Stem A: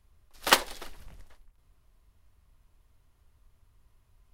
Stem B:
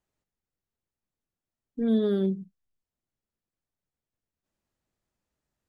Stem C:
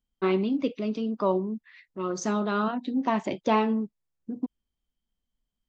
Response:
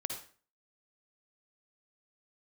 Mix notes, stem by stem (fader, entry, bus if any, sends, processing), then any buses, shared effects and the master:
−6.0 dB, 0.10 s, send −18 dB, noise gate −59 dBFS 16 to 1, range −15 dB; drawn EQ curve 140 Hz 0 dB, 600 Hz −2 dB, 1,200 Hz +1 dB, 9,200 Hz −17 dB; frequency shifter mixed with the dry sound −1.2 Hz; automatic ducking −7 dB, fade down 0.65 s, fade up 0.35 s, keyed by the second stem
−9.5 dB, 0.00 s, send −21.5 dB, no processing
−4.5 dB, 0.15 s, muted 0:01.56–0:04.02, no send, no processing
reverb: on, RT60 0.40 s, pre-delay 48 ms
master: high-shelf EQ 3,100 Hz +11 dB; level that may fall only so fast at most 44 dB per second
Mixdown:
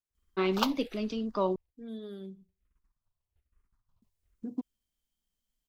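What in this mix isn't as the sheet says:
stem A: send off
stem B −9.5 dB → −18.5 dB
master: missing level that may fall only so fast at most 44 dB per second

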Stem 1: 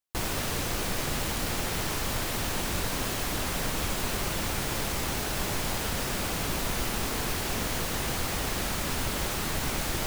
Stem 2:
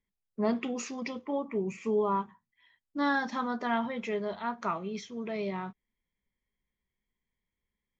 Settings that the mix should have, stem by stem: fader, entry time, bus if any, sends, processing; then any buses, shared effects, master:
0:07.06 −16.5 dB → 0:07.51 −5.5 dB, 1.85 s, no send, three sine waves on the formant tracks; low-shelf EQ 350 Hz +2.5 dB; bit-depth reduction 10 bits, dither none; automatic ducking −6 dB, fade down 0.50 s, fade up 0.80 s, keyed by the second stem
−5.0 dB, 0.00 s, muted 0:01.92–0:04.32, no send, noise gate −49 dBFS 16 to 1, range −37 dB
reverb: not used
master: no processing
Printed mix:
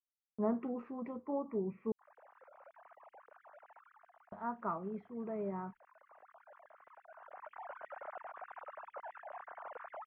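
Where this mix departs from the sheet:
stem 1 −16.5 dB → −28.0 dB
master: extra low-pass filter 1,400 Hz 24 dB per octave

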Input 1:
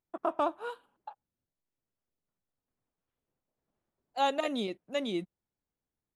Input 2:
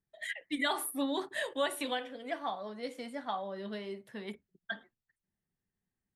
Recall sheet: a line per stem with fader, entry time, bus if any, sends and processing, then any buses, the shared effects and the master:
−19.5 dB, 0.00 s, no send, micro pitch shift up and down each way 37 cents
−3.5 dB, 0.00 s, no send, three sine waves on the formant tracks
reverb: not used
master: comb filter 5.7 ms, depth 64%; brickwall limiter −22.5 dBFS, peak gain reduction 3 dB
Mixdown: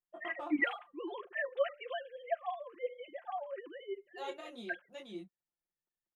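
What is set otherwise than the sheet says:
stem 1 −19.5 dB → −11.5 dB
master: missing brickwall limiter −22.5 dBFS, peak gain reduction 3 dB

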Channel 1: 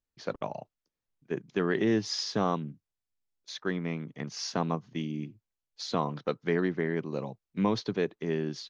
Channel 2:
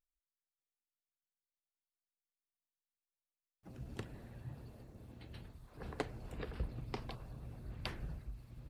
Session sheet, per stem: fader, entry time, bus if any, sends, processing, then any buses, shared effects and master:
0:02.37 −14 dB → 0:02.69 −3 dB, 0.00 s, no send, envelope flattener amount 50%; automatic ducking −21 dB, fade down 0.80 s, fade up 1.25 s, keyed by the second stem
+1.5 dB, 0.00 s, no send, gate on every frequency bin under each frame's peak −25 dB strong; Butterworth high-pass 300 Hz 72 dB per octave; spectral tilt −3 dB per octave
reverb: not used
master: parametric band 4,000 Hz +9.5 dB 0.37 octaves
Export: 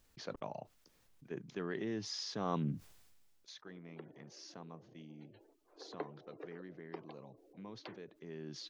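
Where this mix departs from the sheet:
stem 2 +1.5 dB → −5.0 dB
master: missing parametric band 4,000 Hz +9.5 dB 0.37 octaves

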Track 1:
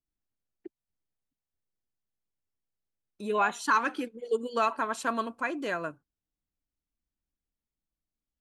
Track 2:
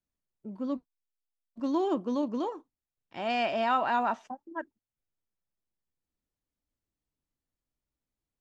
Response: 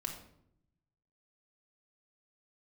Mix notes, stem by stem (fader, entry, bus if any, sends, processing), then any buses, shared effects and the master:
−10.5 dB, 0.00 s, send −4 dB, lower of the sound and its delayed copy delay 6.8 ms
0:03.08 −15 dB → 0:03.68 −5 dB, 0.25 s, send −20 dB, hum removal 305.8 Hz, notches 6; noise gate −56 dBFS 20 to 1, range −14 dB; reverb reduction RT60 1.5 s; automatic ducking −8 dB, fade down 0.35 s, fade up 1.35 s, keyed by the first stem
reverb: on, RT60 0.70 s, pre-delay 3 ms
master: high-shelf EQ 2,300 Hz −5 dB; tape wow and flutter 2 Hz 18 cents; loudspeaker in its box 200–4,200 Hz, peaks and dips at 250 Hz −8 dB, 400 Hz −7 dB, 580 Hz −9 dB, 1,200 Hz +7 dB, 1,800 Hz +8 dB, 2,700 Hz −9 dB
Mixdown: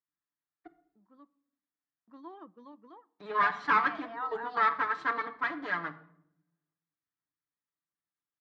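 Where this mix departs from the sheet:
stem 1 −10.5 dB → −4.0 dB
stem 2: entry 0.25 s → 0.50 s

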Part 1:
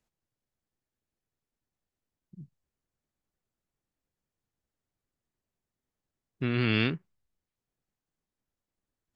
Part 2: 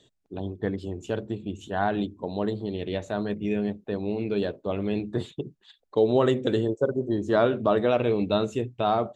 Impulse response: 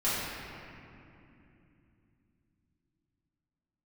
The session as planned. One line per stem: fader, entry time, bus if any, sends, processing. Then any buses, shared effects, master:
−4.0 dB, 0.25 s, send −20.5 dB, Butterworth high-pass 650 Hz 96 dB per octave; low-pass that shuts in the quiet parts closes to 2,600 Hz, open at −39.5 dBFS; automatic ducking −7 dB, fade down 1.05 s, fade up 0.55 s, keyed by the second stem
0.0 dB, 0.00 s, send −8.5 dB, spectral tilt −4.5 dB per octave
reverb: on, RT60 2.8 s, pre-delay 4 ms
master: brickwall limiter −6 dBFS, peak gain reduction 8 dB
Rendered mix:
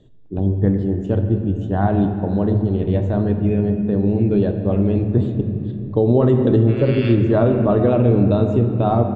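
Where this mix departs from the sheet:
stem 1 −4.0 dB → +2.5 dB
stem 2: send −8.5 dB → −14.5 dB

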